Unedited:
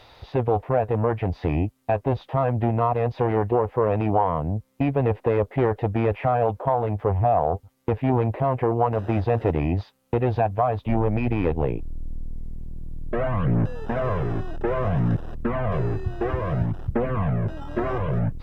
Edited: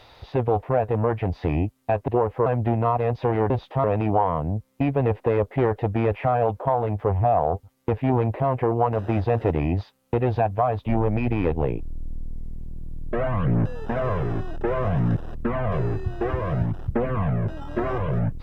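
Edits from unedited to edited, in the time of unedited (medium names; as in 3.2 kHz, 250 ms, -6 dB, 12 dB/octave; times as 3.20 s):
2.08–2.42 s: swap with 3.46–3.84 s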